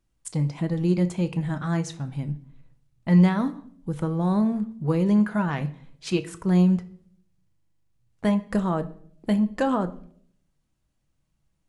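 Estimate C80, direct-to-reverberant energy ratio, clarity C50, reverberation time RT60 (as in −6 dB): 20.5 dB, 9.0 dB, 16.5 dB, 0.60 s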